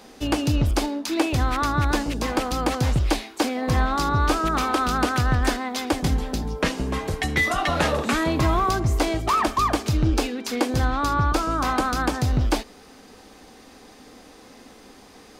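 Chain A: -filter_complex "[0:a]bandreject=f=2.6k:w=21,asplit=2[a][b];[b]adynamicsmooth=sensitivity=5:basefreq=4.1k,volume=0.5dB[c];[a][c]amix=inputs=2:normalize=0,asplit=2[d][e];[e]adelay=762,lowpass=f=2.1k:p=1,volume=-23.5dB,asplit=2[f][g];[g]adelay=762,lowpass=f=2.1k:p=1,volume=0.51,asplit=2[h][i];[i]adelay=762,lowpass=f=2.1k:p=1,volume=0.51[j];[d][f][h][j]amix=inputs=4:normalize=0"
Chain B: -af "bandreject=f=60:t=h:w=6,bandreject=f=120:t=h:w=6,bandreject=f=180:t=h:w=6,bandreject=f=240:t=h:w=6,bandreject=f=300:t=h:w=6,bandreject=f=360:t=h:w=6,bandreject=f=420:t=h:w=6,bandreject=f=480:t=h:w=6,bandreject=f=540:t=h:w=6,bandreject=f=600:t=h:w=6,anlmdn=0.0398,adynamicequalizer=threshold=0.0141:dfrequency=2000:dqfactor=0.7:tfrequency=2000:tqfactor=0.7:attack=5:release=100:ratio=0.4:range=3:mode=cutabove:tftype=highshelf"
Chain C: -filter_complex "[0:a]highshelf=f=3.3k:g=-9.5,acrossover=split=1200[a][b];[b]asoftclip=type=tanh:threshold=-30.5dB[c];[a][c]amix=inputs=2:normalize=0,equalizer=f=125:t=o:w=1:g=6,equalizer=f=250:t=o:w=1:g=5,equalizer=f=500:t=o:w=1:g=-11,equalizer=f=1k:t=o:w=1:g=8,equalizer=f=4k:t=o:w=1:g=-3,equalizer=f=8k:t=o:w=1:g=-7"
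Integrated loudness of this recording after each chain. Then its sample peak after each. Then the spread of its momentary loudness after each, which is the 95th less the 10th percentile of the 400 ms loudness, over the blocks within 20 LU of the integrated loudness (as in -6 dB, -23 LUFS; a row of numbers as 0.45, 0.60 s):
-17.0, -24.0, -21.5 LUFS; -1.0, -8.0, -5.5 dBFS; 5, 4, 6 LU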